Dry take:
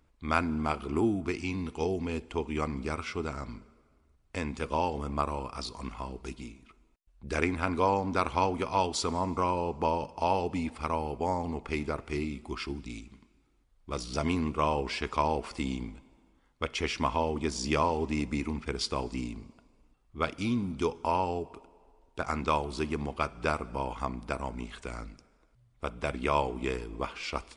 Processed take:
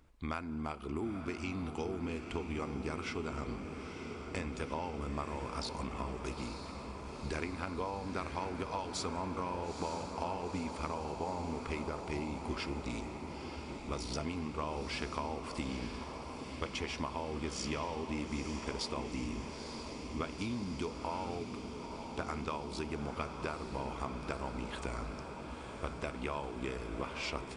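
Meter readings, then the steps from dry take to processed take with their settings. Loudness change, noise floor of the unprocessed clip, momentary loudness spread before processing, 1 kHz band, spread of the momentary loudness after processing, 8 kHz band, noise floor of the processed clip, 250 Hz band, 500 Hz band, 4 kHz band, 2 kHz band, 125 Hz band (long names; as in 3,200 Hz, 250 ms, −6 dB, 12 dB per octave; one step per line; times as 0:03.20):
−7.5 dB, −67 dBFS, 12 LU, −9.0 dB, 6 LU, −4.5 dB, −45 dBFS, −6.0 dB, −7.5 dB, −4.5 dB, −6.0 dB, −5.5 dB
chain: downward compressor 6 to 1, threshold −38 dBFS, peak gain reduction 16.5 dB
on a send: feedback delay with all-pass diffusion 926 ms, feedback 72%, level −7 dB
on the sum: level +2 dB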